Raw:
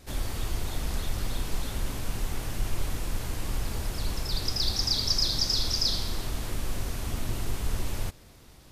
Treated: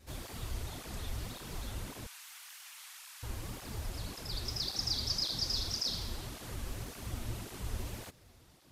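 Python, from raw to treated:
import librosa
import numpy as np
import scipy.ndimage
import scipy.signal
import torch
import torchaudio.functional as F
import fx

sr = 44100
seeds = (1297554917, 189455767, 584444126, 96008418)

y = fx.bessel_highpass(x, sr, hz=1600.0, order=6, at=(2.06, 3.23))
y = fx.flanger_cancel(y, sr, hz=1.8, depth_ms=7.2)
y = y * librosa.db_to_amplitude(-4.5)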